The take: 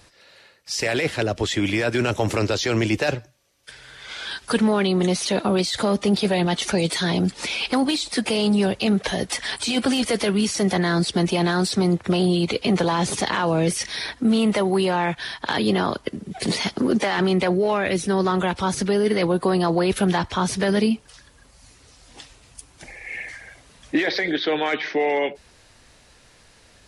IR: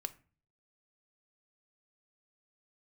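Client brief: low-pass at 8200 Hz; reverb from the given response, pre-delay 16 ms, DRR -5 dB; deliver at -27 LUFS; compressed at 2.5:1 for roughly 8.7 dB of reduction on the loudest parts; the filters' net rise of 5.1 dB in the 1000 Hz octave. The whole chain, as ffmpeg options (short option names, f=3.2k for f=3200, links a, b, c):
-filter_complex "[0:a]lowpass=8.2k,equalizer=f=1k:t=o:g=6.5,acompressor=threshold=-28dB:ratio=2.5,asplit=2[a][b];[1:a]atrim=start_sample=2205,adelay=16[c];[b][c]afir=irnorm=-1:irlink=0,volume=6.5dB[d];[a][d]amix=inputs=2:normalize=0,volume=-5dB"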